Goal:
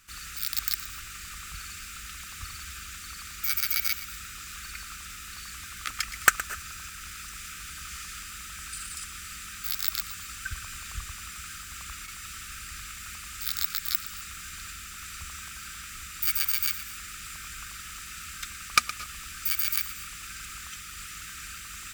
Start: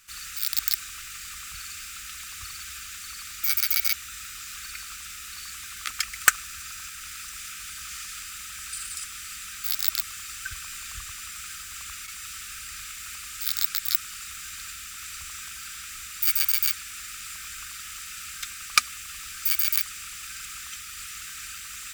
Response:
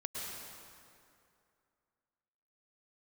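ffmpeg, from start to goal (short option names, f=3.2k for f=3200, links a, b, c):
-filter_complex "[0:a]tiltshelf=f=1.2k:g=5,asplit=2[a][b];[1:a]atrim=start_sample=2205,afade=t=out:st=0.19:d=0.01,atrim=end_sample=8820,adelay=117[c];[b][c]afir=irnorm=-1:irlink=0,volume=-11dB[d];[a][d]amix=inputs=2:normalize=0,volume=1dB"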